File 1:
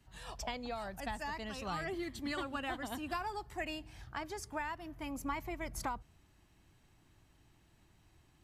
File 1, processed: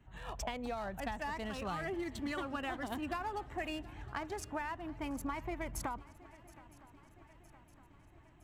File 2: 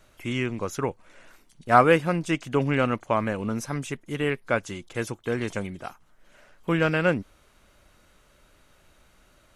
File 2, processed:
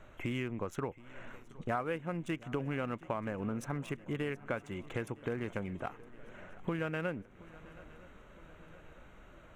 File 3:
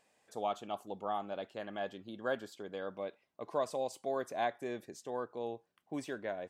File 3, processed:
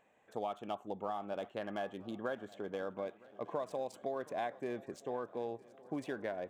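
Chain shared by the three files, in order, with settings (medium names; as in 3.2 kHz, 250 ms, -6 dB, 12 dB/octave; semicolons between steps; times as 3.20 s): local Wiener filter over 9 samples; dynamic bell 4.7 kHz, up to -7 dB, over -56 dBFS, Q 2.4; compression 5:1, threshold -39 dBFS; shuffle delay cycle 963 ms, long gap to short 3:1, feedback 58%, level -21 dB; trim +4 dB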